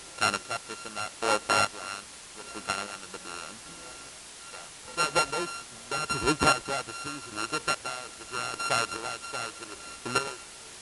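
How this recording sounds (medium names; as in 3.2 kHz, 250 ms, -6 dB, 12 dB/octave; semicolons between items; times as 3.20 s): a buzz of ramps at a fixed pitch in blocks of 32 samples; chopped level 0.82 Hz, depth 65%, duty 35%; a quantiser's noise floor 8-bit, dither triangular; MP3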